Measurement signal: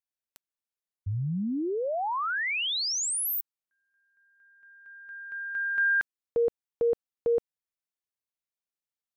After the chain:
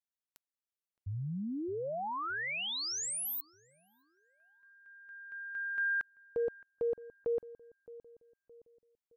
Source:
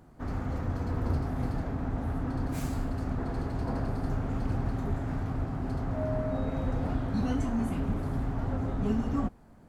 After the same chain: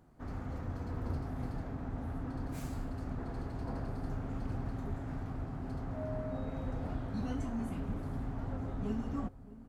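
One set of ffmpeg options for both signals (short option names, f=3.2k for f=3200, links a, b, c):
-filter_complex "[0:a]asplit=2[a][b];[b]adelay=617,lowpass=f=890:p=1,volume=-16.5dB,asplit=2[c][d];[d]adelay=617,lowpass=f=890:p=1,volume=0.46,asplit=2[e][f];[f]adelay=617,lowpass=f=890:p=1,volume=0.46,asplit=2[g][h];[h]adelay=617,lowpass=f=890:p=1,volume=0.46[i];[a][c][e][g][i]amix=inputs=5:normalize=0,volume=-7.5dB"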